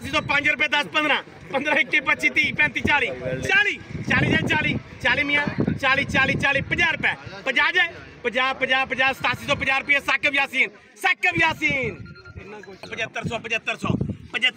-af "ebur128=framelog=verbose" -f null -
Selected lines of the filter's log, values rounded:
Integrated loudness:
  I:         -20.7 LUFS
  Threshold: -30.9 LUFS
Loudness range:
  LRA:         3.3 LU
  Threshold: -40.7 LUFS
  LRA low:   -23.1 LUFS
  LRA high:  -19.9 LUFS